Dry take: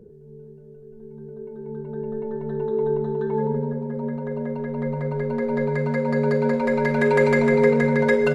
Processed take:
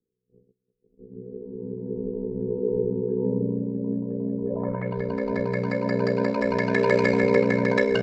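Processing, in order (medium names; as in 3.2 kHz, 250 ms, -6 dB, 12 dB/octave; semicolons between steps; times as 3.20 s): gate -39 dBFS, range -36 dB; low-pass sweep 320 Hz -> 5.2 kHz, 4.60–5.21 s; tape speed +4%; ring modulator 31 Hz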